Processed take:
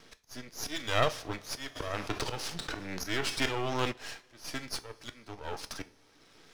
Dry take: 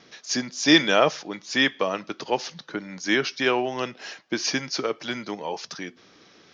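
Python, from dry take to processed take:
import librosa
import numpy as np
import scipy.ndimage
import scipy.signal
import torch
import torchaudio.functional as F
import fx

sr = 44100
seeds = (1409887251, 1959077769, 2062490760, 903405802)

y = fx.dynamic_eq(x, sr, hz=3200.0, q=7.0, threshold_db=-42.0, ratio=4.0, max_db=4)
y = fx.auto_swell(y, sr, attack_ms=629.0)
y = np.maximum(y, 0.0)
y = fx.rev_double_slope(y, sr, seeds[0], early_s=0.26, late_s=3.0, knee_db=-21, drr_db=10.5)
y = fx.env_flatten(y, sr, amount_pct=50, at=(1.75, 3.91), fade=0.02)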